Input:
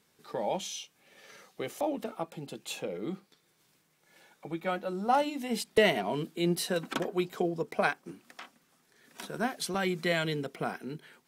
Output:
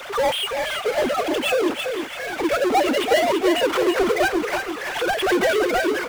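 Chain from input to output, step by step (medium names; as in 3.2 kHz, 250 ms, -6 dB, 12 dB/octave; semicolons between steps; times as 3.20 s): formants replaced by sine waves; in parallel at +1 dB: compression 20:1, threshold -41 dBFS, peak gain reduction 25.5 dB; on the sum: time stretch by phase-locked vocoder 0.54×; power-law waveshaper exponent 0.35; feedback delay 334 ms, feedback 35%, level -6.5 dB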